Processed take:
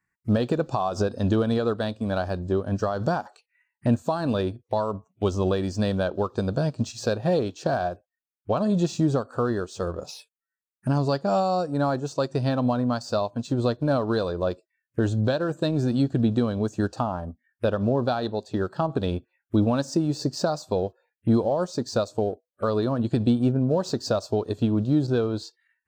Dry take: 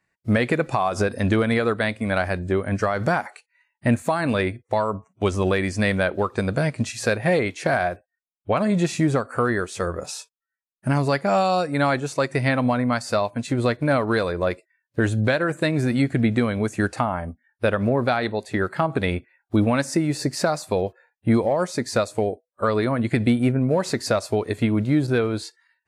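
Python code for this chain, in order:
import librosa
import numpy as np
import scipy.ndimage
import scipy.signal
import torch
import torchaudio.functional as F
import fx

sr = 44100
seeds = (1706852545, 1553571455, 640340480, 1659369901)

p1 = fx.peak_eq(x, sr, hz=3300.0, db=-9.5, octaves=0.73, at=(11.4, 12.05))
p2 = np.sign(p1) * np.maximum(np.abs(p1) - 10.0 ** (-35.0 / 20.0), 0.0)
p3 = p1 + F.gain(torch.from_numpy(p2), -9.0).numpy()
p4 = fx.env_phaser(p3, sr, low_hz=590.0, high_hz=2100.0, full_db=-24.0)
y = F.gain(torch.from_numpy(p4), -4.0).numpy()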